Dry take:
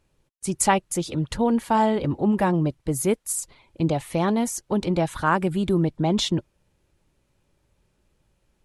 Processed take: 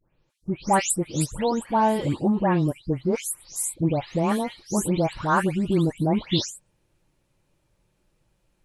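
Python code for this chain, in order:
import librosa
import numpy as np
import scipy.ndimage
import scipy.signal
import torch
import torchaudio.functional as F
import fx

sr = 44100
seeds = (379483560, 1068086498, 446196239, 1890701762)

y = fx.spec_delay(x, sr, highs='late', ms=298)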